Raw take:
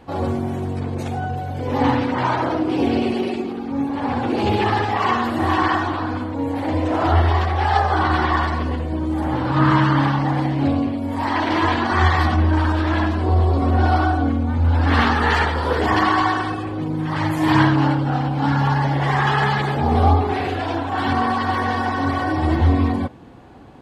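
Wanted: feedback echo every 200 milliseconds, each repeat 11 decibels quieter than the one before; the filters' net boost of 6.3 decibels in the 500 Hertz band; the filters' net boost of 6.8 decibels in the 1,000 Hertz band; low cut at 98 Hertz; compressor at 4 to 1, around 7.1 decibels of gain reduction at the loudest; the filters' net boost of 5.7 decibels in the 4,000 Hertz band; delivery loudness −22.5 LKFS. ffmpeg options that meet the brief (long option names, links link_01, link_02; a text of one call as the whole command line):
ffmpeg -i in.wav -af "highpass=98,equalizer=frequency=500:width_type=o:gain=6.5,equalizer=frequency=1000:width_type=o:gain=6,equalizer=frequency=4000:width_type=o:gain=7,acompressor=threshold=-15dB:ratio=4,aecho=1:1:200|400|600:0.282|0.0789|0.0221,volume=-3.5dB" out.wav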